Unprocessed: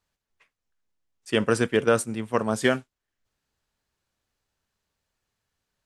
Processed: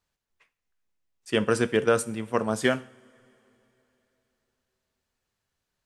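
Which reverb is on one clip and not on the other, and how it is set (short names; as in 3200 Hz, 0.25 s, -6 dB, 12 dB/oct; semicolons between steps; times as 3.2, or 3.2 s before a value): two-slope reverb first 0.52 s, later 3.5 s, from -20 dB, DRR 15 dB; gain -1.5 dB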